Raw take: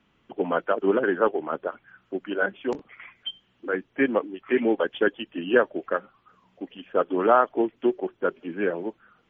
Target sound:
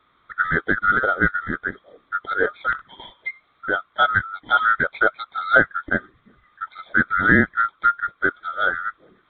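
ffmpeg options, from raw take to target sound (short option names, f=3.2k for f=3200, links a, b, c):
-af "afftfilt=real='real(if(lt(b,960),b+48*(1-2*mod(floor(b/48),2)),b),0)':imag='imag(if(lt(b,960),b+48*(1-2*mod(floor(b/48),2)),b),0)':win_size=2048:overlap=0.75,adynamicequalizer=threshold=0.02:dfrequency=1800:dqfactor=2.2:tfrequency=1800:tqfactor=2.2:attack=5:release=100:ratio=0.375:range=2.5:mode=cutabove:tftype=bell,aresample=8000,aresample=44100,volume=4.5dB"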